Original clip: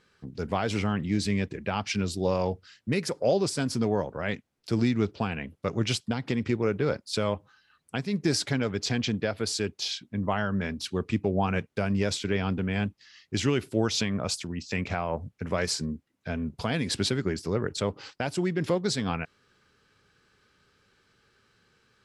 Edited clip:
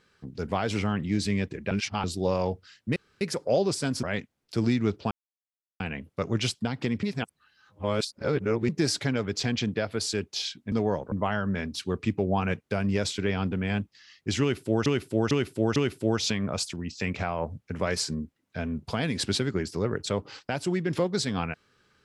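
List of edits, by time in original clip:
1.71–2.04 s: reverse
2.96 s: insert room tone 0.25 s
3.78–4.18 s: move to 10.18 s
5.26 s: insert silence 0.69 s
6.49–8.15 s: reverse
13.47–13.92 s: loop, 4 plays

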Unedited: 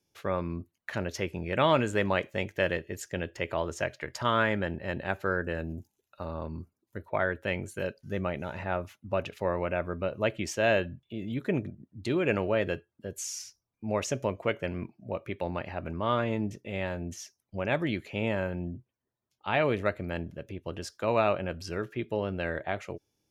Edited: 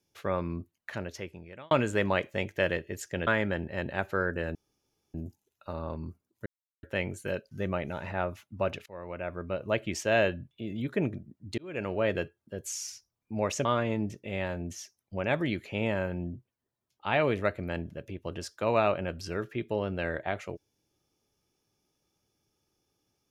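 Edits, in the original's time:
0.60–1.71 s: fade out
3.27–4.38 s: delete
5.66 s: insert room tone 0.59 s
6.98–7.35 s: mute
9.38–10.55 s: fade in equal-power, from -23 dB
12.10–12.59 s: fade in
14.17–16.06 s: delete

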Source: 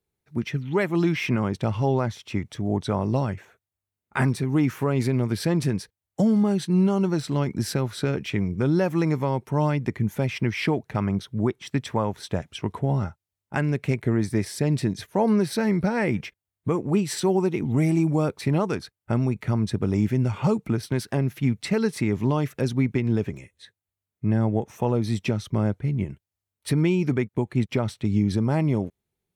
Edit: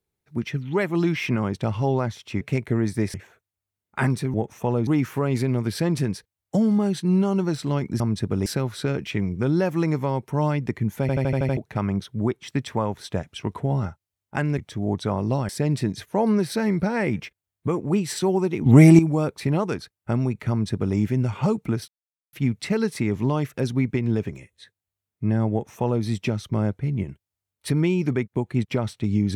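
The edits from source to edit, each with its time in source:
2.41–3.32 s: swap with 13.77–14.50 s
10.20 s: stutter in place 0.08 s, 7 plays
17.67–18.00 s: gain +10.5 dB
19.51–19.97 s: copy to 7.65 s
20.89–21.34 s: mute
24.52–25.05 s: copy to 4.52 s

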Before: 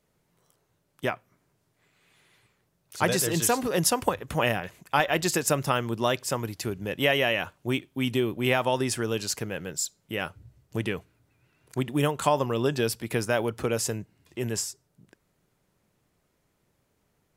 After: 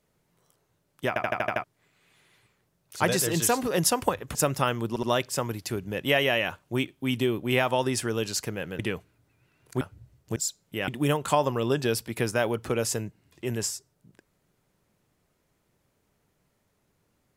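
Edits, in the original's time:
1.08 s: stutter in place 0.08 s, 7 plays
4.35–5.43 s: delete
5.97 s: stutter 0.07 s, 3 plays
9.73–10.25 s: swap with 10.80–11.82 s

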